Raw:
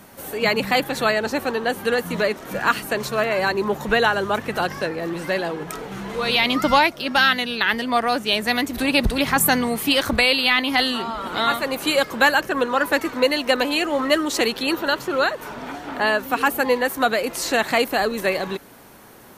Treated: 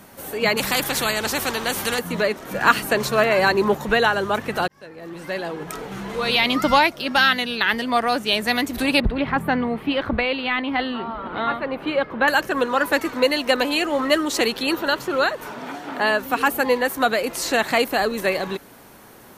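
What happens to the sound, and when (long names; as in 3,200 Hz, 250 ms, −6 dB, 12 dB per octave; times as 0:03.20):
0:00.57–0:01.99: every bin compressed towards the loudest bin 2 to 1
0:02.61–0:03.75: clip gain +3.5 dB
0:04.68–0:05.79: fade in
0:09.00–0:12.28: high-frequency loss of the air 470 metres
0:15.51–0:16.11: high-pass filter 130 Hz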